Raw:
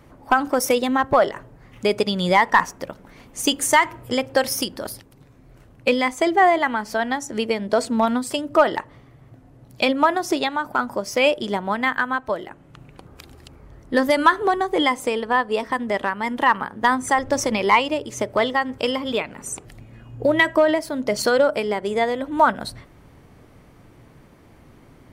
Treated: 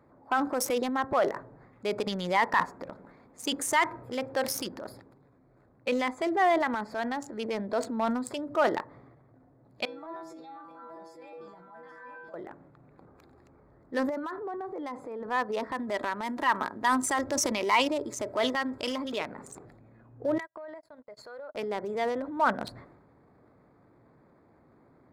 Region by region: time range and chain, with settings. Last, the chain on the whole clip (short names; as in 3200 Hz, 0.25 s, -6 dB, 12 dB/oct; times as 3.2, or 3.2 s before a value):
9.85–12.34 transient shaper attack -5 dB, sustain +11 dB + metallic resonator 160 Hz, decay 0.6 s, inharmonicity 0.002 + echo 0.831 s -8.5 dB
14.09–15.28 HPF 49 Hz + high shelf 2100 Hz -9 dB + compressor 5:1, threshold -24 dBFS
15.79–19.19 tone controls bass 0 dB, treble +8 dB + comb 3.1 ms, depth 36%
20.38–21.55 bell 220 Hz -13.5 dB 1.4 oct + compressor, threshold -31 dBFS + gate -36 dBFS, range -42 dB
whole clip: Wiener smoothing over 15 samples; HPF 250 Hz 6 dB/oct; transient shaper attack -4 dB, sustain +7 dB; gain -7 dB